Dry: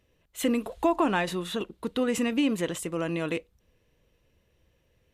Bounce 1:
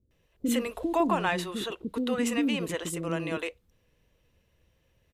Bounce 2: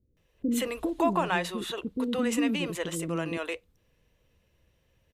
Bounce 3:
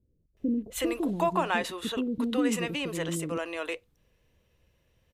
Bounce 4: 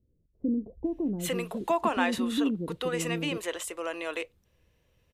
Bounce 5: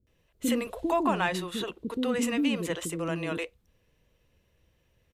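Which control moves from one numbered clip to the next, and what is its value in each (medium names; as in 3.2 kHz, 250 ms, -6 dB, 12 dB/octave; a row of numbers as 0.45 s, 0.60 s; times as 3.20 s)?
bands offset in time, time: 110 ms, 170 ms, 370 ms, 850 ms, 70 ms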